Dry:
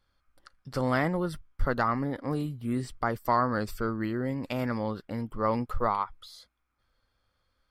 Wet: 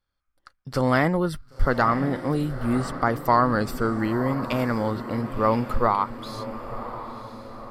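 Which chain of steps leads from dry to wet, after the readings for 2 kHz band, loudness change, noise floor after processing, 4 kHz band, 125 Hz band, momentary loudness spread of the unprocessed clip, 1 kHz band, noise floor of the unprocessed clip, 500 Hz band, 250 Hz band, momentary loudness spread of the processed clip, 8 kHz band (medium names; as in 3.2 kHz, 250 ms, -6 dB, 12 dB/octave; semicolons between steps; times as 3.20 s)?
+6.5 dB, +6.0 dB, -73 dBFS, +6.5 dB, +6.5 dB, 9 LU, +6.5 dB, -76 dBFS, +6.5 dB, +6.5 dB, 14 LU, +6.5 dB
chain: gate -55 dBFS, range -14 dB; echo that smears into a reverb 1010 ms, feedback 50%, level -11.5 dB; trim +6 dB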